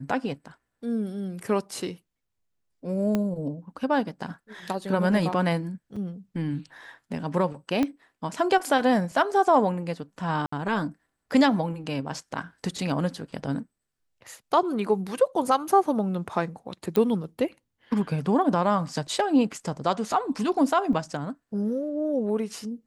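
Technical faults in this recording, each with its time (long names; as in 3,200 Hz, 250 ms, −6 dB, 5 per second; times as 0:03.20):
0:03.15: click −13 dBFS
0:05.96: drop-out 5 ms
0:07.83: click −13 dBFS
0:10.46–0:10.52: drop-out 64 ms
0:16.96: click −13 dBFS
0:20.93: drop-out 3.2 ms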